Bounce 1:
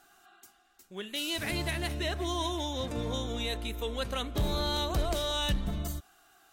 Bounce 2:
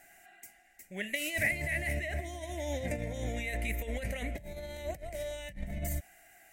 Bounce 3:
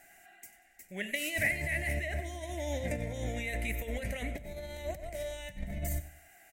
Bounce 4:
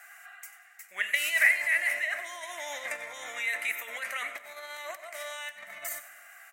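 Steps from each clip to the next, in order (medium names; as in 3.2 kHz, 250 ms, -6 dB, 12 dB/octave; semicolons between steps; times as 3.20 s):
compressor with a negative ratio -35 dBFS, ratio -0.5; FFT filter 180 Hz 0 dB, 420 Hz -8 dB, 610 Hz +6 dB, 1.2 kHz -21 dB, 2 kHz +14 dB, 3.5 kHz -13 dB, 8 kHz +2 dB
feedback delay 94 ms, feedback 35%, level -15 dB
resonant high-pass 1.2 kHz, resonance Q 11; on a send at -15.5 dB: reverberation RT60 2.1 s, pre-delay 13 ms; on the sum: trim +4.5 dB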